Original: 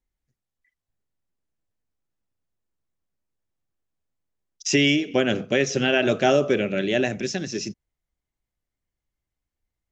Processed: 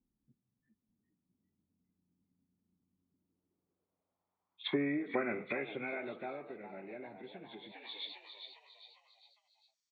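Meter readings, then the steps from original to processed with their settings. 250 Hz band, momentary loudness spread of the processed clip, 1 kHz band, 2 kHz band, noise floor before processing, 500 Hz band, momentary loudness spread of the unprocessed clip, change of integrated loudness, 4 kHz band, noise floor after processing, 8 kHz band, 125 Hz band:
-15.5 dB, 17 LU, -15.0 dB, -16.0 dB, under -85 dBFS, -18.0 dB, 11 LU, -18.0 dB, -17.5 dB, under -85 dBFS, no reading, -21.0 dB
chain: knee-point frequency compression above 1.4 kHz 1.5:1; compression 2.5:1, threshold -24 dBFS, peak gain reduction 7 dB; treble shelf 5.2 kHz -8 dB; frequency-shifting echo 404 ms, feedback 44%, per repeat +90 Hz, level -10 dB; low-pass that closes with the level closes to 740 Hz, closed at -26 dBFS; comb 0.9 ms, depth 40%; band-pass sweep 230 Hz -> 5.7 kHz, 3.01–6.52 s; peaking EQ 91 Hz -3.5 dB; trim +12.5 dB

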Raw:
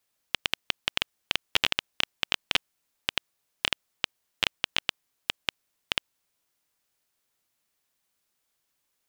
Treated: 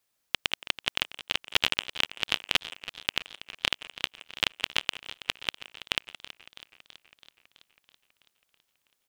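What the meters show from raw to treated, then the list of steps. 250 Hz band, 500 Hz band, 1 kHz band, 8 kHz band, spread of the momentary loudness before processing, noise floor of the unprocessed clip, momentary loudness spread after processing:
0.0 dB, +0.5 dB, +0.5 dB, +0.5 dB, 9 LU, -78 dBFS, 15 LU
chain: speakerphone echo 170 ms, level -14 dB; modulated delay 327 ms, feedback 65%, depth 75 cents, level -15.5 dB

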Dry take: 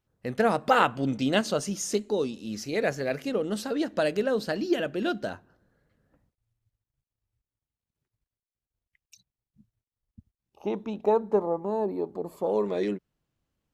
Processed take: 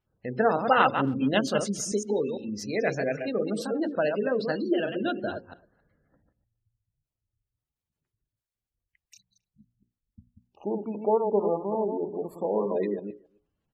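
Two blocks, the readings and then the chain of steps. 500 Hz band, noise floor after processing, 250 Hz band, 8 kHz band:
+0.5 dB, under -85 dBFS, +0.5 dB, 0.0 dB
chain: chunks repeated in reverse 113 ms, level -5.5 dB; spectral gate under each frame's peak -25 dB strong; hum notches 60/120/180/240/300/360/420/480/540 Hz; speakerphone echo 270 ms, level -26 dB

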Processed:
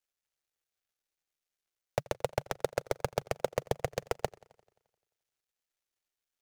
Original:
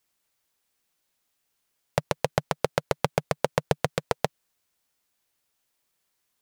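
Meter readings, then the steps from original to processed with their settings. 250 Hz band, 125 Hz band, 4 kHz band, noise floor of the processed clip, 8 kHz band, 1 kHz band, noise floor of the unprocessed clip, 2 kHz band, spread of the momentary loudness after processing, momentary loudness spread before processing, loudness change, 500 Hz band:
-9.5 dB, -8.5 dB, -9.0 dB, under -85 dBFS, -6.0 dB, -7.5 dB, -77 dBFS, -8.5 dB, 3 LU, 4 LU, -6.5 dB, -5.0 dB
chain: dead-time distortion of 0.085 ms; graphic EQ with 31 bands 160 Hz -10 dB, 250 Hz -11 dB, 1 kHz -6 dB, 6.3 kHz +3 dB; hard clipper -13 dBFS, distortion -10 dB; modulated delay 87 ms, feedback 61%, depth 143 cents, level -23 dB; trim -3 dB

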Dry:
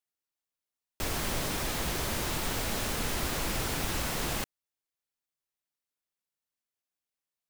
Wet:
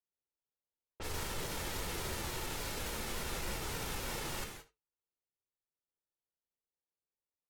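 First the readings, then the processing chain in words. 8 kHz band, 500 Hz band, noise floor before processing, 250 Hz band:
-7.0 dB, -6.5 dB, under -85 dBFS, -9.0 dB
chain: flange 0.31 Hz, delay 4.6 ms, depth 6.9 ms, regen -65%; comb 2.2 ms, depth 31%; peak limiter -32 dBFS, peak gain reduction 10 dB; delay 78 ms -17 dB; level-controlled noise filter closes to 770 Hz, open at -39 dBFS; gated-style reverb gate 200 ms flat, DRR 4 dB; vibrato with a chosen wave saw down 3.5 Hz, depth 100 cents; trim +1 dB

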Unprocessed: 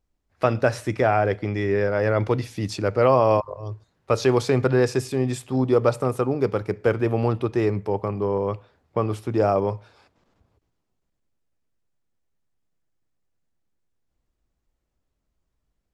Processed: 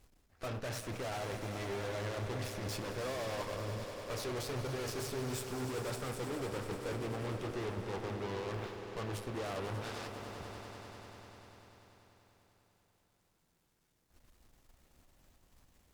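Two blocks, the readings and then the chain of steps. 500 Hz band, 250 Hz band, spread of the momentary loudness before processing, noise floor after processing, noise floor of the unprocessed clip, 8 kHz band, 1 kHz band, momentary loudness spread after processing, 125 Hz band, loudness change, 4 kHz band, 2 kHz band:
-18.0 dB, -17.0 dB, 8 LU, -76 dBFS, -78 dBFS, -5.0 dB, -16.5 dB, 8 LU, -15.0 dB, -17.0 dB, -5.5 dB, -12.5 dB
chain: companding laws mixed up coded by mu; flange 1.3 Hz, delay 7.2 ms, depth 4.8 ms, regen -63%; vibrato 3.2 Hz 19 cents; saturation -25.5 dBFS, distortion -8 dB; reverse; compression 5:1, threshold -46 dBFS, peak gain reduction 16 dB; reverse; Chebyshev shaper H 8 -12 dB, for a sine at -36.5 dBFS; on a send: echo with a slow build-up 98 ms, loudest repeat 5, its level -13 dB; on the sum: trim +5 dB

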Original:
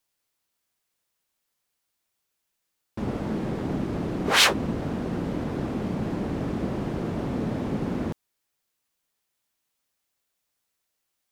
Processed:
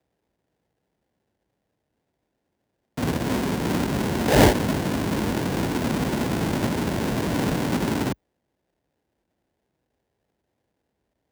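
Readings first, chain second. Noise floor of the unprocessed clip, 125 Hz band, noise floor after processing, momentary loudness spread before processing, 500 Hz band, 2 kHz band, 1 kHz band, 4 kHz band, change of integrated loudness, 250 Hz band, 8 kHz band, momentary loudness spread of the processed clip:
-80 dBFS, +5.0 dB, -78 dBFS, 11 LU, +6.0 dB, 0.0 dB, +5.0 dB, -4.0 dB, +3.5 dB, +4.5 dB, +0.5 dB, 8 LU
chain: square wave that keeps the level; sample-rate reducer 1.2 kHz, jitter 20%; frequency shift +38 Hz

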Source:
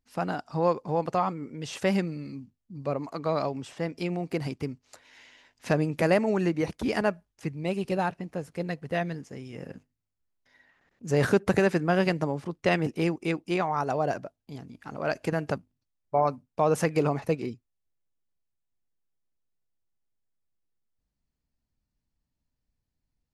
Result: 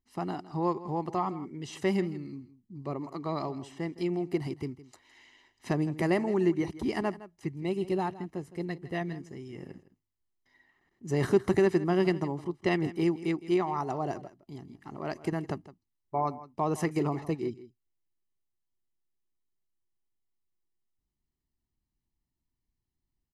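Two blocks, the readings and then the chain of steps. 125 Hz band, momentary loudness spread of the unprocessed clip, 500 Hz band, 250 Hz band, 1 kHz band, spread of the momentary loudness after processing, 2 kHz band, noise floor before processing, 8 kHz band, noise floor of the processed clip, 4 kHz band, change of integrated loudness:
-3.0 dB, 17 LU, -3.5 dB, -1.0 dB, -4.0 dB, 17 LU, -6.5 dB, -83 dBFS, -5.5 dB, -85 dBFS, -4.5 dB, -3.0 dB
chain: peaking EQ 370 Hz +13.5 dB 0.51 oct; comb 1 ms, depth 60%; delay 162 ms -16.5 dB; trim -7 dB

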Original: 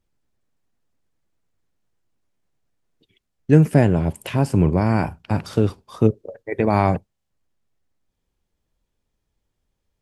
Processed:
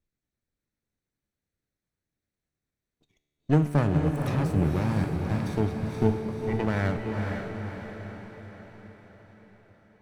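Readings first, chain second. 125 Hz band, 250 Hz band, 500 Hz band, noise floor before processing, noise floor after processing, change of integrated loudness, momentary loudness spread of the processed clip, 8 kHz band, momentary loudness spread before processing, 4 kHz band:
-6.0 dB, -6.5 dB, -8.0 dB, -77 dBFS, under -85 dBFS, -7.5 dB, 18 LU, no reading, 11 LU, -5.0 dB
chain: comb filter that takes the minimum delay 0.5 ms; treble shelf 7.7 kHz -3.5 dB; feedback comb 73 Hz, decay 1.8 s, harmonics all, mix 70%; on a send: echo that smears into a reverb 498 ms, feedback 55%, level -4 dB; on the sum: trim +1.5 dB

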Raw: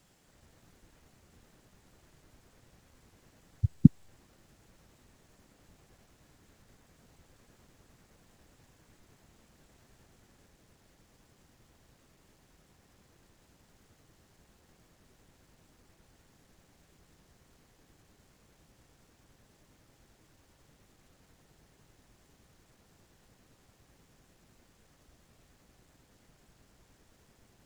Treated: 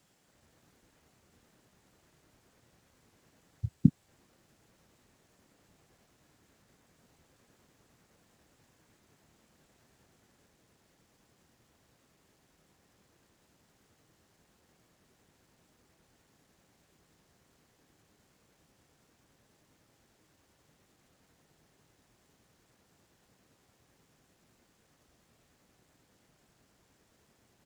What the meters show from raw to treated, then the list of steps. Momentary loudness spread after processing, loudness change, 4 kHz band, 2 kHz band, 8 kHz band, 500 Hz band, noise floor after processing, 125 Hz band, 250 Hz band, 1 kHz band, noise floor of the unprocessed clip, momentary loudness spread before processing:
14 LU, -4.5 dB, -3.0 dB, -3.0 dB, no reading, -3.0 dB, -71 dBFS, -5.0 dB, -4.0 dB, -3.0 dB, -67 dBFS, 12 LU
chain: high-pass 120 Hz 6 dB/octave; doubling 26 ms -13.5 dB; trim -3 dB

